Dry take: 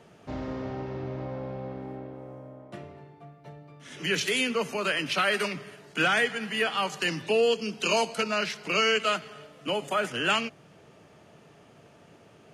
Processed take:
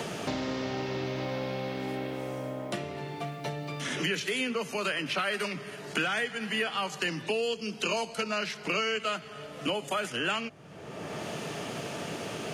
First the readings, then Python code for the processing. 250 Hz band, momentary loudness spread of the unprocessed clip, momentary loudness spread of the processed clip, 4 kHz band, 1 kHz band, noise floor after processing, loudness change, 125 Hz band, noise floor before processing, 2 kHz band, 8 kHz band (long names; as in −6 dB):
0.0 dB, 19 LU, 8 LU, −3.5 dB, −3.5 dB, −44 dBFS, −4.5 dB, +1.0 dB, −55 dBFS, −3.5 dB, −2.5 dB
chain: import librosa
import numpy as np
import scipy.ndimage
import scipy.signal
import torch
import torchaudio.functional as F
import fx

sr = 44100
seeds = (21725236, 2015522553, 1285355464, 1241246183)

y = fx.band_squash(x, sr, depth_pct=100)
y = F.gain(torch.from_numpy(y), -3.5).numpy()